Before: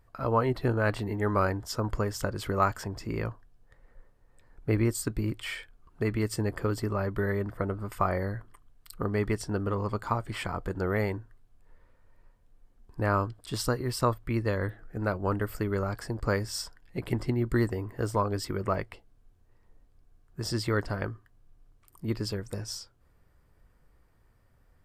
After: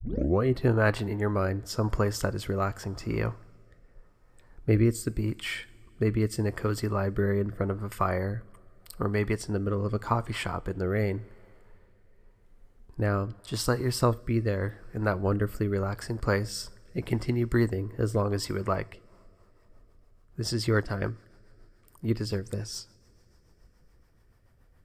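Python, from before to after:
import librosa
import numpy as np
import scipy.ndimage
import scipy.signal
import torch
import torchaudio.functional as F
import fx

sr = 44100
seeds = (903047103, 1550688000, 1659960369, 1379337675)

y = fx.tape_start_head(x, sr, length_s=0.42)
y = fx.rev_double_slope(y, sr, seeds[0], early_s=0.45, late_s=4.3, knee_db=-18, drr_db=18.0)
y = fx.rotary_switch(y, sr, hz=0.85, then_hz=7.0, switch_at_s=18.8)
y = y * librosa.db_to_amplitude(3.5)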